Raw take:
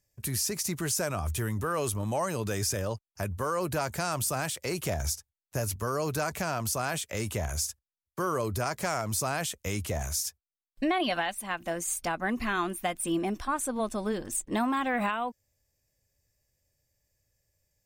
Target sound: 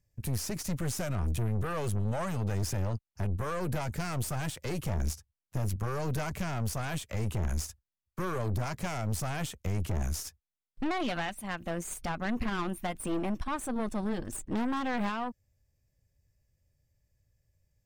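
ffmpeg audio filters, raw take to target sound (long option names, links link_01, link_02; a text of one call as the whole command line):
ffmpeg -i in.wav -af "bass=frequency=250:gain=10,treble=frequency=4000:gain=-5,aeval=exprs='(tanh(25.1*val(0)+0.65)-tanh(0.65))/25.1':channel_layout=same" out.wav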